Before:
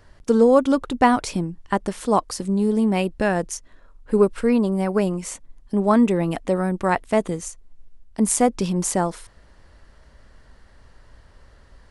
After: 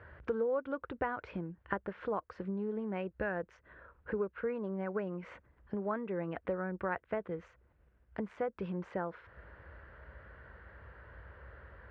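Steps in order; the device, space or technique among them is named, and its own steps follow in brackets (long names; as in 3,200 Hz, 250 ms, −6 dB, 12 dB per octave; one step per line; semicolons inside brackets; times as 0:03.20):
bass amplifier (downward compressor 4 to 1, threshold −35 dBFS, peak gain reduction 20.5 dB; loudspeaker in its box 62–2,400 Hz, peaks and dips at 62 Hz +6 dB, 160 Hz −3 dB, 250 Hz −10 dB, 500 Hz +4 dB, 770 Hz −3 dB, 1,500 Hz +8 dB)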